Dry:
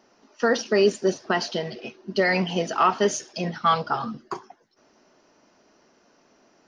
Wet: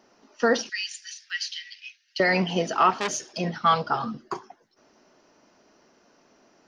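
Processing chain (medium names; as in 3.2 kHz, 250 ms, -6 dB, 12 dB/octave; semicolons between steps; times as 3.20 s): 0.69–2.20 s: steep high-pass 1.8 kHz 48 dB/octave; 2.91–3.38 s: transformer saturation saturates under 3.1 kHz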